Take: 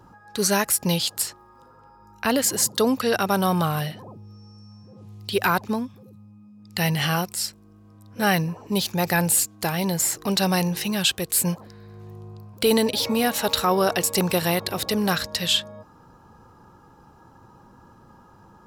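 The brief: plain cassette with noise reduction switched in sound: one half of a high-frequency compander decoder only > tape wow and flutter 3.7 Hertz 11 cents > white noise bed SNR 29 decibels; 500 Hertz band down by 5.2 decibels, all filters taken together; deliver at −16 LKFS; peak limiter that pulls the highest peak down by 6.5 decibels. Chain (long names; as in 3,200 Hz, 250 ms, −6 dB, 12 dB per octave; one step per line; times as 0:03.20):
parametric band 500 Hz −6.5 dB
brickwall limiter −16 dBFS
one half of a high-frequency compander decoder only
tape wow and flutter 3.7 Hz 11 cents
white noise bed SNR 29 dB
level +10.5 dB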